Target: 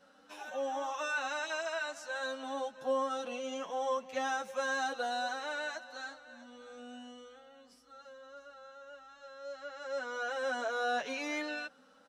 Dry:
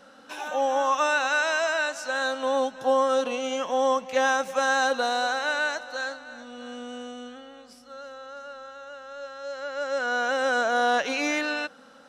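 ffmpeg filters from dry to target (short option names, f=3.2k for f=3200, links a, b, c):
-filter_complex "[0:a]asplit=2[a][b];[b]adelay=8.8,afreqshift=1.7[c];[a][c]amix=inputs=2:normalize=1,volume=-8dB"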